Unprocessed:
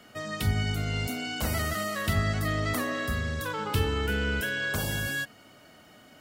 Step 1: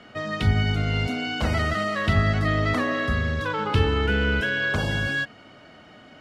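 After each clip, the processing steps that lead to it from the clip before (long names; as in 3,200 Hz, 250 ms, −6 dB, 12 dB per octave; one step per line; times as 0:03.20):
low-pass filter 3,700 Hz 12 dB per octave
level +6 dB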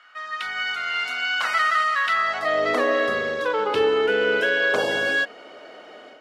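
automatic gain control gain up to 9.5 dB
high-pass filter sweep 1,300 Hz → 450 Hz, 0:02.15–0:02.69
level −5.5 dB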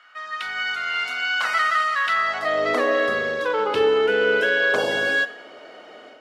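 convolution reverb RT60 0.70 s, pre-delay 34 ms, DRR 15 dB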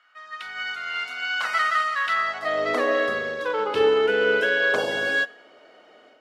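expander for the loud parts 1.5 to 1, over −34 dBFS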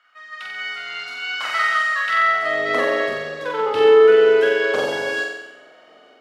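flutter between parallel walls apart 7.8 metres, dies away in 0.92 s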